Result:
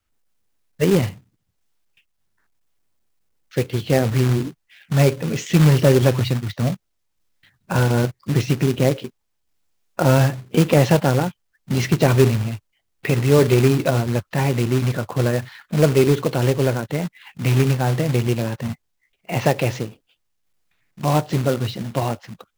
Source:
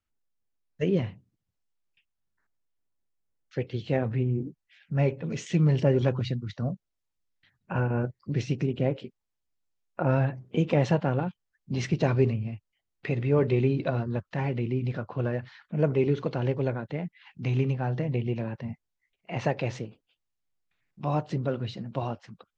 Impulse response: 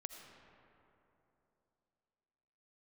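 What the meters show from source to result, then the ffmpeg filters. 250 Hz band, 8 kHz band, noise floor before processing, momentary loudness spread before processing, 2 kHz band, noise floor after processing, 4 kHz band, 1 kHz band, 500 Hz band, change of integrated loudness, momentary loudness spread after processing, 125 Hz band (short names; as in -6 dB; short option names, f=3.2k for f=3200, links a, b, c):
+8.5 dB, n/a, -83 dBFS, 13 LU, +10.5 dB, -72 dBFS, +14.0 dB, +9.5 dB, +9.0 dB, +9.0 dB, 12 LU, +9.0 dB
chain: -af "acontrast=75,adynamicequalizer=threshold=0.0158:dfrequency=190:dqfactor=2.8:tfrequency=190:tqfactor=2.8:attack=5:release=100:ratio=0.375:range=2:mode=cutabove:tftype=bell,acrusher=bits=3:mode=log:mix=0:aa=0.000001,volume=2.5dB"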